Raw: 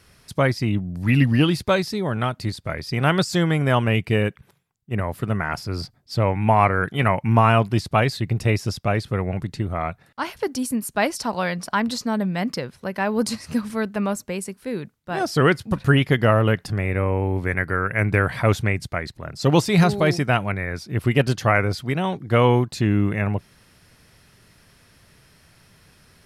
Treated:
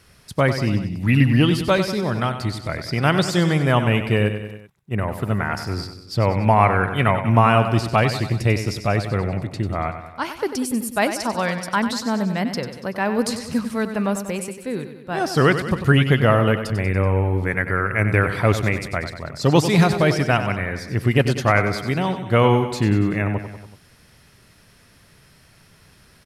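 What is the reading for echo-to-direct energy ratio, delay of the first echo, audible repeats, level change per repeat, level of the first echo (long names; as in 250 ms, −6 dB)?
−8.0 dB, 95 ms, 4, −4.5 dB, −10.0 dB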